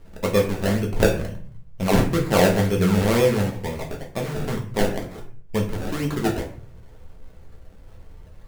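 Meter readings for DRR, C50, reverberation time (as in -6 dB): -1.0 dB, 8.5 dB, 0.45 s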